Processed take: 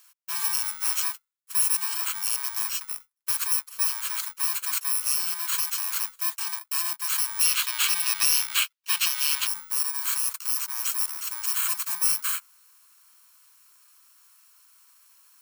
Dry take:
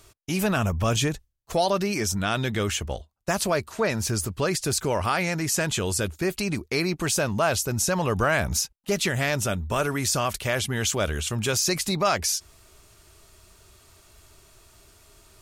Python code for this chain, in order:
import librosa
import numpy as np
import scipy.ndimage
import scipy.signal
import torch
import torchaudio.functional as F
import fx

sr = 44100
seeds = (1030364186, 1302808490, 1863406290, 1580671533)

y = fx.bit_reversed(x, sr, seeds[0], block=64)
y = scipy.signal.sosfilt(scipy.signal.butter(16, 920.0, 'highpass', fs=sr, output='sos'), y)
y = fx.peak_eq(y, sr, hz=3100.0, db=fx.steps((0.0, -3.5), (7.41, 7.0), (9.47, -7.0)), octaves=1.5)